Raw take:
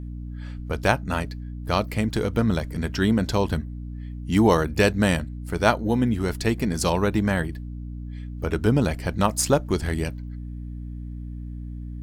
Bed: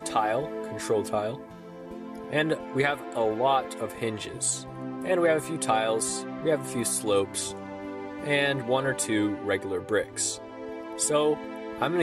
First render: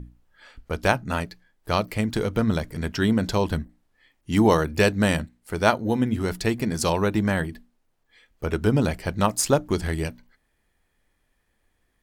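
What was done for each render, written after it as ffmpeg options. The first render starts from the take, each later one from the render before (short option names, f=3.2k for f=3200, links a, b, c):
-af "bandreject=f=60:t=h:w=6,bandreject=f=120:t=h:w=6,bandreject=f=180:t=h:w=6,bandreject=f=240:t=h:w=6,bandreject=f=300:t=h:w=6"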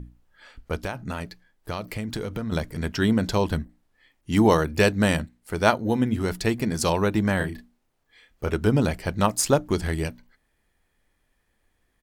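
-filter_complex "[0:a]asettb=1/sr,asplit=3[a][b][c];[a]atrim=end=0.834[d];[b]atrim=start=0.83:end=2.52,asetpts=PTS-STARTPTS,afade=t=in:d=0.004:c=qsin,afade=t=out:st=1.686:d=0.004:c=qsin,acompressor=threshold=-26dB:ratio=6:attack=3.2:release=140:knee=1:detection=peak[e];[c]atrim=start=2.516[f];[d][e]acrossfade=d=0.004:c1=hsin:c2=qsin[g];[g][f]acrossfade=d=0.004:c1=qsin:c2=hsin,asplit=3[h][i][j];[h]afade=t=out:st=7.39:d=0.02[k];[i]asplit=2[l][m];[m]adelay=33,volume=-4dB[n];[l][n]amix=inputs=2:normalize=0,afade=t=in:st=7.39:d=0.02,afade=t=out:st=8.48:d=0.02[o];[j]afade=t=in:st=8.48:d=0.02[p];[k][o][p]amix=inputs=3:normalize=0"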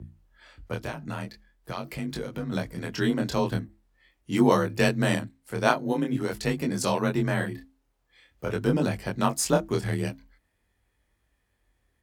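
-af "afreqshift=28,flanger=delay=20:depth=6.1:speed=0.45"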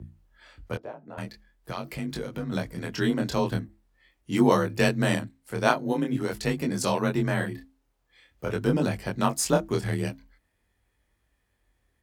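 -filter_complex "[0:a]asettb=1/sr,asplit=3[a][b][c];[a]atrim=end=0.774[d];[b]atrim=start=0.77:end=1.18,asetpts=PTS-STARTPTS,afade=t=in:d=0.004:c=qsin,afade=t=out:st=0.406:d=0.004:c=qsin,bandpass=f=550:t=q:w=1.6[e];[c]atrim=start=1.176[f];[d][e]acrossfade=d=0.004:c1=hsin:c2=qsin[g];[g][f]acrossfade=d=0.004:c1=qsin:c2=hsin"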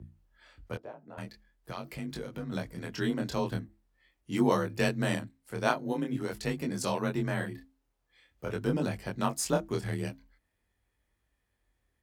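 -af "volume=-5.5dB"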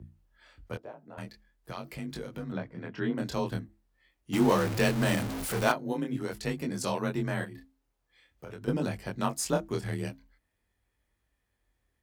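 -filter_complex "[0:a]asettb=1/sr,asplit=3[a][b][c];[a]atrim=end=2.524[d];[b]atrim=start=2.52:end=3.18,asetpts=PTS-STARTPTS,afade=t=in:d=0.004:c=qsin,afade=t=out:st=0.656:d=0.004:c=qsin,highpass=100,lowpass=2.3k[e];[c]atrim=start=3.176[f];[d][e]acrossfade=d=0.004:c1=hsin:c2=qsin[g];[g][f]acrossfade=d=0.004:c1=qsin:c2=hsin,asettb=1/sr,asplit=3[h][i][j];[h]atrim=end=4.334[k];[i]atrim=start=4.33:end=5.72,asetpts=PTS-STARTPTS,afade=t=in:d=0.004:c=qsin,afade=t=out:st=1.386:d=0.004:c=qsin,aeval=exprs='val(0)+0.5*0.0355*sgn(val(0))':c=same[l];[j]atrim=start=5.716[m];[k][l]acrossfade=d=0.004:c1=hsin:c2=qsin[n];[n][m]acrossfade=d=0.004:c1=qsin:c2=hsin,asettb=1/sr,asplit=3[o][p][q];[o]atrim=end=7.444[r];[p]atrim=start=7.44:end=8.68,asetpts=PTS-STARTPTS,afade=t=in:d=0.004:c=qsin,afade=t=out:st=1.236:d=0.004:c=qsin,acompressor=threshold=-40dB:ratio=4:attack=3.2:release=140:knee=1:detection=peak[s];[q]atrim=start=8.676[t];[r][s]acrossfade=d=0.004:c1=hsin:c2=qsin[u];[u][t]acrossfade=d=0.004:c1=qsin:c2=hsin"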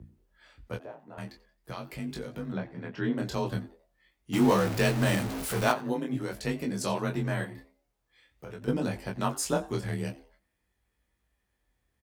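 -filter_complex "[0:a]asplit=2[a][b];[b]adelay=16,volume=-8dB[c];[a][c]amix=inputs=2:normalize=0,asplit=4[d][e][f][g];[e]adelay=89,afreqshift=150,volume=-20dB[h];[f]adelay=178,afreqshift=300,volume=-29.9dB[i];[g]adelay=267,afreqshift=450,volume=-39.8dB[j];[d][h][i][j]amix=inputs=4:normalize=0"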